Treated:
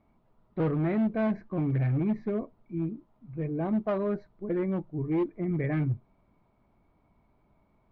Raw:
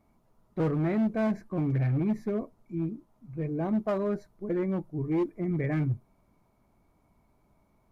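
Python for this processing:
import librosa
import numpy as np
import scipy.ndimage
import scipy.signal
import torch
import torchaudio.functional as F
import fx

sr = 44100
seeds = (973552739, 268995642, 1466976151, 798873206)

y = scipy.signal.sosfilt(scipy.signal.butter(4, 3800.0, 'lowpass', fs=sr, output='sos'), x)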